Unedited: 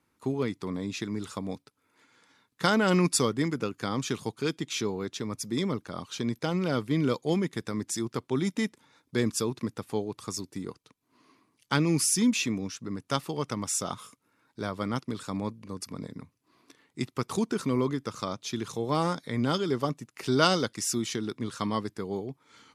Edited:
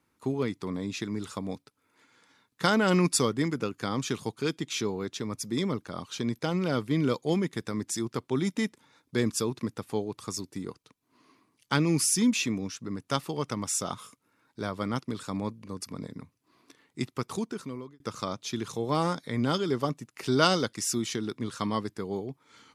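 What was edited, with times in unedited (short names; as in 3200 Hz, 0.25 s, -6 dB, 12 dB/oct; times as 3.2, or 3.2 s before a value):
17.04–18 fade out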